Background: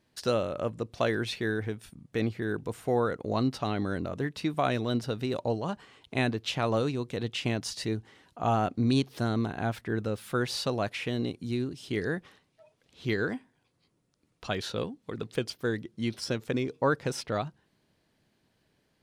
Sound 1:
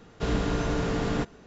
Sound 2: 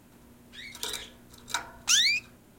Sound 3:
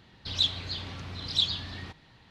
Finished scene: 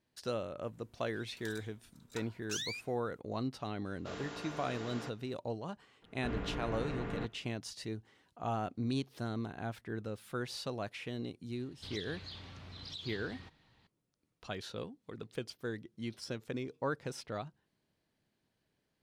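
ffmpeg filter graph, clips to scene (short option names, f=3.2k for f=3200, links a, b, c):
-filter_complex "[1:a]asplit=2[a][b];[0:a]volume=-9.5dB[c];[a]highpass=f=650:p=1[d];[b]highshelf=f=3.5k:t=q:w=1.5:g=-13.5[e];[3:a]acompressor=threshold=-31dB:ratio=6:attack=3.2:release=140:knee=1:detection=peak[f];[2:a]atrim=end=2.58,asetpts=PTS-STARTPTS,volume=-17dB,afade=t=in:d=0.004:c=hsin,afade=t=out:st=2.576:d=0.004:c=hsin,adelay=620[g];[d]atrim=end=1.46,asetpts=PTS-STARTPTS,volume=-11.5dB,afade=t=in:d=0.004:c=hsin,afade=t=out:st=1.456:d=0.004:c=hsin,adelay=169785S[h];[e]atrim=end=1.46,asetpts=PTS-STARTPTS,volume=-12.5dB,afade=t=in:d=0.004:c=hsin,afade=t=out:st=1.456:d=0.004:c=hsin,adelay=6020[i];[f]atrim=end=2.3,asetpts=PTS-STARTPTS,volume=-10.5dB,afade=t=in:d=0.004:c=hsin,afade=t=out:st=2.296:d=0.004:c=hsin,adelay=11570[j];[c][g][h][i][j]amix=inputs=5:normalize=0"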